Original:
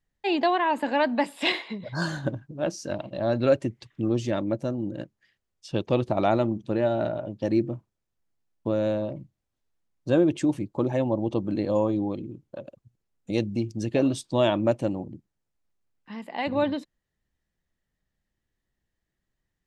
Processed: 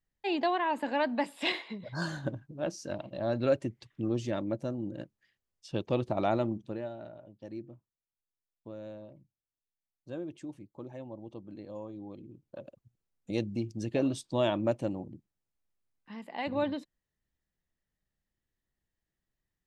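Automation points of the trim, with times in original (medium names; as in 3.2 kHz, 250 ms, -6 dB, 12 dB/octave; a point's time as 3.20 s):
6.56 s -6 dB
6.98 s -18.5 dB
11.93 s -18.5 dB
12.59 s -6 dB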